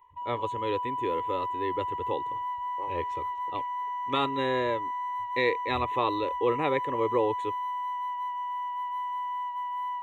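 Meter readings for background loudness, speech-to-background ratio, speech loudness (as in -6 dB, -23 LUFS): -33.0 LUFS, 2.0 dB, -31.0 LUFS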